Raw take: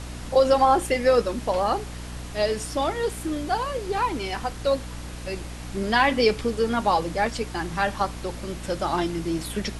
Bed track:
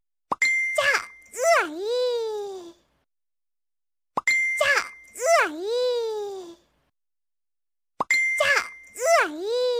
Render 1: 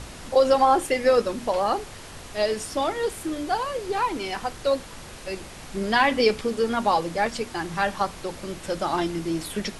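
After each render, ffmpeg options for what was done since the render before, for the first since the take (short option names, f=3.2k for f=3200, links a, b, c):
-af "bandreject=f=60:t=h:w=4,bandreject=f=120:t=h:w=4,bandreject=f=180:t=h:w=4,bandreject=f=240:t=h:w=4,bandreject=f=300:t=h:w=4"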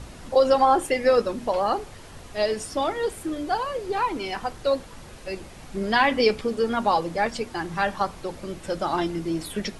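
-af "afftdn=nr=6:nf=-41"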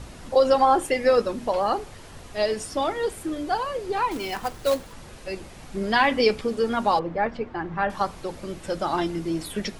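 -filter_complex "[0:a]asettb=1/sr,asplit=3[a][b][c];[a]atrim=end=4.114[d];[b]atrim=start=4.11:end=4.93,asetpts=PTS-STARTPTS,afade=t=in:d=0.004:c=qsin,afade=t=out:st=0.816:d=0.004:c=qsin,acrusher=bits=3:mode=log:mix=0:aa=0.000001[e];[c]atrim=start=4.926[f];[d][e]acrossfade=d=0.004:c1=hsin:c2=qsin[g];[g][f]acrossfade=d=0.004:c1=qsin:c2=hsin,asettb=1/sr,asplit=3[h][i][j];[h]atrim=end=6.994[k];[i]atrim=start=6.99:end=7.9,asetpts=PTS-STARTPTS,afade=t=in:d=0.004:c=qsin,afade=t=out:st=0.906:d=0.004:c=qsin,lowpass=1.9k[l];[j]atrim=start=7.896[m];[k][l]acrossfade=d=0.004:c1=hsin:c2=qsin[n];[n][m]acrossfade=d=0.004:c1=qsin:c2=hsin"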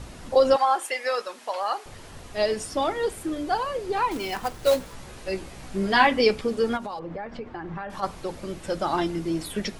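-filter_complex "[0:a]asettb=1/sr,asplit=3[a][b][c];[a]atrim=end=0.564[d];[b]atrim=start=0.56:end=1.86,asetpts=PTS-STARTPTS,afade=t=in:d=0.004:c=qsin,afade=t=out:st=1.296:d=0.004:c=qsin,highpass=840[e];[c]atrim=start=1.856[f];[d][e]acrossfade=d=0.004:c1=hsin:c2=qsin[g];[g][f]acrossfade=d=0.004:c1=qsin:c2=hsin,asettb=1/sr,asplit=3[h][i][j];[h]atrim=end=4.614[k];[i]atrim=start=4.61:end=6.07,asetpts=PTS-STARTPTS,afade=t=in:d=0.004:c=qsin,afade=t=out:st=1.456:d=0.004:c=qsin,asplit=2[l][m];[m]adelay=16,volume=-3.5dB[n];[l][n]amix=inputs=2:normalize=0,atrim=end_sample=64386[o];[j]atrim=start=6.066[p];[k][o]acrossfade=d=0.004:c1=hsin:c2=qsin[q];[q][p]acrossfade=d=0.004:c1=qsin:c2=hsin,asplit=3[r][s][t];[r]afade=t=out:st=6.76:d=0.02[u];[s]acompressor=threshold=-30dB:ratio=8:attack=3.2:release=140:knee=1:detection=peak,afade=t=in:st=6.76:d=0.02,afade=t=out:st=8.02:d=0.02[v];[t]afade=t=in:st=8.02:d=0.02[w];[u][v][w]amix=inputs=3:normalize=0"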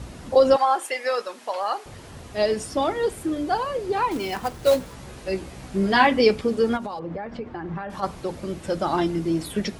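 -af "highpass=49,lowshelf=f=490:g=5"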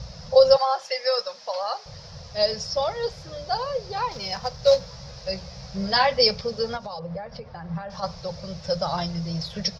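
-af "firequalizer=gain_entry='entry(110,0);entry(160,4);entry(290,-30);entry(510,2);entry(770,-3);entry(1500,-5);entry(3000,-5);entry(5200,14);entry(8500,-27);entry(12000,-23)':delay=0.05:min_phase=1"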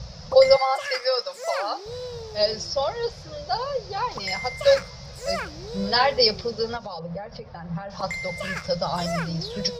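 -filter_complex "[1:a]volume=-11dB[a];[0:a][a]amix=inputs=2:normalize=0"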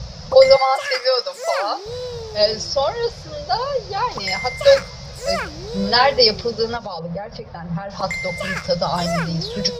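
-af "volume=5.5dB,alimiter=limit=-1dB:level=0:latency=1"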